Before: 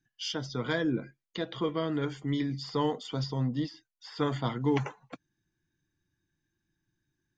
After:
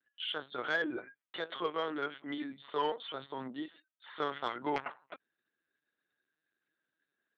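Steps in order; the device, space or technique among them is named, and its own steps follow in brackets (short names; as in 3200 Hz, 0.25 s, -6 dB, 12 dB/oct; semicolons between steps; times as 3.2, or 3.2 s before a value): talking toy (LPC vocoder at 8 kHz pitch kept; HPF 470 Hz 12 dB/oct; bell 1400 Hz +5.5 dB 0.54 oct; soft clip -20 dBFS, distortion -23 dB)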